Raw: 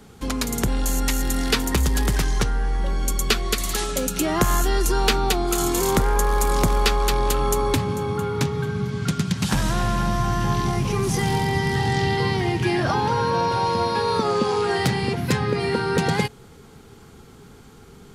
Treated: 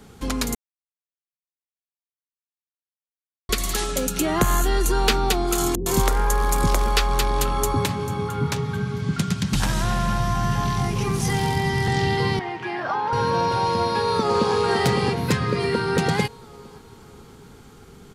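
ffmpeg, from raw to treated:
-filter_complex "[0:a]asettb=1/sr,asplit=3[s0][s1][s2];[s0]atrim=end=4.224[s3];[s1]atrim=start=4.22:end=5.08,asetpts=PTS-STARTPTS,afade=t=in:d=0.004:c=qsin,afade=t=out:st=0.856:d=0.004:c=qsin,bandreject=f=5300:w=6.3[s4];[s2]atrim=start=5.076[s5];[s3][s4]acrossfade=d=0.004:c1=hsin:c2=qsin[s6];[s6][s5]acrossfade=d=0.004:c1=qsin:c2=hsin,asettb=1/sr,asplit=3[s7][s8][s9];[s7]atrim=end=5.754[s10];[s8]atrim=start=5.75:end=11.88,asetpts=PTS-STARTPTS,afade=t=in:d=0.004:c=qsin,afade=t=out:st=6.126:d=0.004:c=qsin,acrossover=split=360[s11][s12];[s12]adelay=110[s13];[s11][s13]amix=inputs=2:normalize=0,atrim=end_sample=270333[s14];[s9]atrim=start=11.876[s15];[s10][s14]acrossfade=d=0.004:c1=hsin:c2=qsin[s16];[s16][s15]acrossfade=d=0.004:c1=qsin:c2=hsin,asettb=1/sr,asplit=3[s17][s18][s19];[s17]atrim=end=12.394[s20];[s18]atrim=start=12.39:end=13.13,asetpts=PTS-STARTPTS,afade=t=in:d=0.004:c=qsin,afade=t=out:st=0.736:d=0.004:c=qsin,bandpass=f=1100:t=q:w=0.94[s21];[s19]atrim=start=13.126[s22];[s20][s21]acrossfade=d=0.004:c1=hsin:c2=qsin[s23];[s23][s22]acrossfade=d=0.004:c1=qsin:c2=hsin,asplit=2[s24][s25];[s25]afade=t=in:st=13.73:d=0.01,afade=t=out:st=14.54:d=0.01,aecho=0:1:560|1120|1680|2240|2800|3360:0.595662|0.268048|0.120622|0.0542797|0.0244259|0.0109916[s26];[s24][s26]amix=inputs=2:normalize=0,asettb=1/sr,asplit=3[s27][s28][s29];[s27]atrim=end=15.334[s30];[s28]atrim=start=15.33:end=15.88,asetpts=PTS-STARTPTS,afade=t=in:d=0.004:c=qsin,afade=t=out:st=0.546:d=0.004:c=qsin,asuperstop=centerf=830:order=4:qfactor=6.1[s31];[s29]atrim=start=15.876[s32];[s30][s31]acrossfade=d=0.004:c1=hsin:c2=qsin[s33];[s33][s32]acrossfade=d=0.004:c1=qsin:c2=hsin,asplit=3[s34][s35][s36];[s34]atrim=end=0.55,asetpts=PTS-STARTPTS,afade=t=out:st=0.546:d=0.004:c=hsin[s37];[s35]atrim=start=0.55:end=3.49,asetpts=PTS-STARTPTS,volume=0[s38];[s36]atrim=start=3.49,asetpts=PTS-STARTPTS,afade=t=in:d=0.004:c=hsin[s39];[s37][s38][s39]concat=n=3:v=0:a=1"

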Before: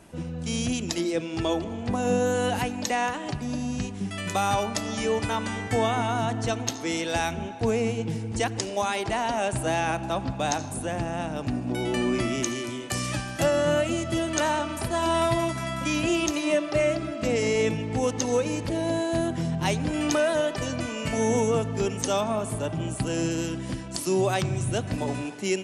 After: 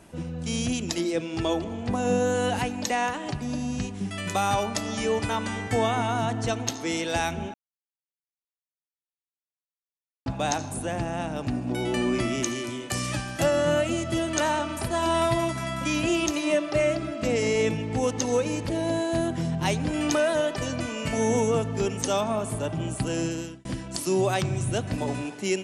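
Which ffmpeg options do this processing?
-filter_complex "[0:a]asettb=1/sr,asplit=3[s0][s1][s2];[s0]atrim=end=1.994[s3];[s1]atrim=start=1.99:end=2.7,asetpts=PTS-STARTPTS,afade=t=in:d=0.004:c=qsin,afade=t=out:st=0.706:d=0.004:c=qsin,lowpass=f=11000:w=0.5412,lowpass=f=11000:w=1.3066[s4];[s2]atrim=start=2.696[s5];[s3][s4]acrossfade=d=0.004:c1=hsin:c2=qsin[s6];[s6][s5]acrossfade=d=0.004:c1=qsin:c2=hsin,asplit=4[s7][s8][s9][s10];[s7]atrim=end=7.54,asetpts=PTS-STARTPTS,afade=t=out:st=7.536:d=0.004:c=hsin[s11];[s8]atrim=start=7.54:end=10.26,asetpts=PTS-STARTPTS,volume=0[s12];[s9]atrim=start=10.26:end=23.65,asetpts=PTS-STARTPTS,afade=t=in:d=0.004:c=hsin,afade=t=out:st=12.77:d=0.62:c=qsin[s13];[s10]atrim=start=23.65,asetpts=PTS-STARTPTS,afade=t=in:d=0.004:c=hsin[s14];[s11][s12][s13][s14]concat=n=4:v=0:a=1"

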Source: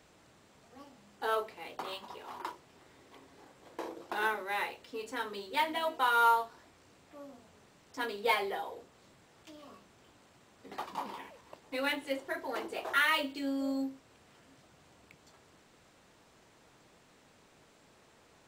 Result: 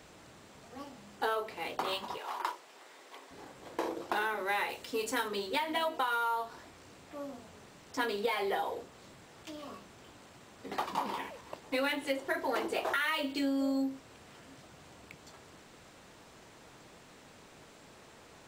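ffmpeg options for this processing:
-filter_complex "[0:a]asettb=1/sr,asplit=3[s0][s1][s2];[s0]atrim=end=2.174[s3];[s1]atrim=start=2.17:end=3.31,asetpts=PTS-STARTPTS,afade=t=in:d=0.004:c=qsin,afade=t=out:st=1.136:d=0.004:c=qsin,highpass=500[s4];[s2]atrim=start=3.306[s5];[s3][s4]acrossfade=d=0.004:c1=hsin:c2=qsin[s6];[s6][s5]acrossfade=d=0.004:c1=qsin:c2=hsin,asettb=1/sr,asplit=3[s7][s8][s9];[s7]atrim=end=4.694[s10];[s8]atrim=start=4.69:end=5.28,asetpts=PTS-STARTPTS,afade=t=in:d=0.004:c=qsin,afade=t=out:st=0.586:d=0.004:c=qsin,equalizer=f=13000:t=o:w=1.7:g=8[s11];[s9]atrim=start=5.276[s12];[s10][s11]acrossfade=d=0.004:c1=hsin:c2=qsin[s13];[s13][s12]acrossfade=d=0.004:c1=qsin:c2=hsin,alimiter=limit=0.0668:level=0:latency=1:release=246,acompressor=threshold=0.0178:ratio=10,volume=2.24"

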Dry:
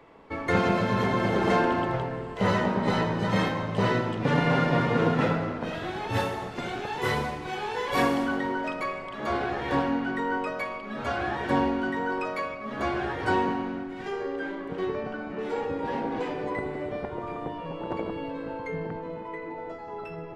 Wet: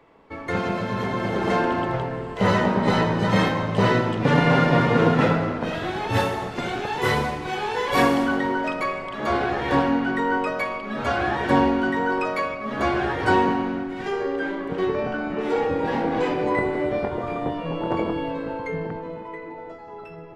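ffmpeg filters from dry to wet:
-filter_complex "[0:a]asettb=1/sr,asplit=3[s0][s1][s2];[s0]atrim=end=14.964[s3];[s1]atrim=start=14.96:end=18.39,asetpts=PTS-STARTPTS,afade=t=in:d=0.004:c=qsin,afade=t=out:st=3.426:d=0.004:c=qsin,asplit=2[s4][s5];[s5]adelay=24,volume=0.501[s6];[s4][s6]amix=inputs=2:normalize=0,atrim=end_sample=151263[s7];[s2]atrim=start=18.386[s8];[s3][s7]acrossfade=d=0.004:c1=hsin:c2=qsin[s9];[s9][s8]acrossfade=d=0.004:c1=qsin:c2=hsin,dynaudnorm=f=330:g=11:m=2.66,volume=0.794"

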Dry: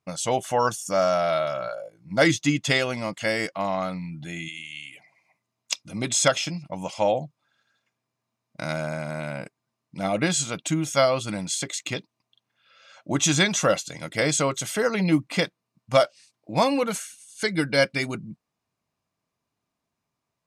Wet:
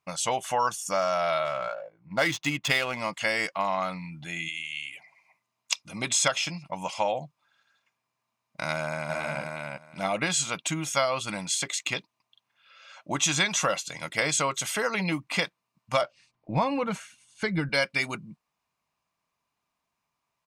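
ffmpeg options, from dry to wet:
-filter_complex "[0:a]asettb=1/sr,asplit=3[s0][s1][s2];[s0]atrim=end=1.454[s3];[s1]atrim=start=1.45:end=3,asetpts=PTS-STARTPTS,afade=t=in:d=0.004:c=qsin,afade=t=out:st=1.546:d=0.004:c=qsin,adynamicsmooth=sensitivity=6.5:basefreq=1900[s4];[s2]atrim=start=2.996[s5];[s3][s4]acrossfade=d=0.004:c1=hsin:c2=qsin[s6];[s6][s5]acrossfade=d=0.004:c1=qsin:c2=hsin,asplit=2[s7][s8];[s8]afade=t=in:st=8.73:d=0.01,afade=t=out:st=9.41:d=0.01,aecho=0:1:360|720|1080:0.707946|0.106192|0.0159288[s9];[s7][s9]amix=inputs=2:normalize=0,asettb=1/sr,asplit=3[s10][s11][s12];[s10]atrim=end=16.014[s13];[s11]atrim=start=16.01:end=17.69,asetpts=PTS-STARTPTS,afade=t=in:d=0.004:c=qsin,afade=t=out:st=1.676:d=0.004:c=qsin,aemphasis=mode=reproduction:type=riaa[s14];[s12]atrim=start=17.686[s15];[s13][s14]acrossfade=d=0.004:c1=hsin:c2=qsin[s16];[s16][s15]acrossfade=d=0.004:c1=qsin:c2=hsin,equalizer=f=100:t=o:w=0.67:g=-8,equalizer=f=1000:t=o:w=0.67:g=6,equalizer=f=2500:t=o:w=0.67:g=4,acompressor=threshold=0.0891:ratio=2.5,equalizer=f=300:t=o:w=2:g=-6.5"

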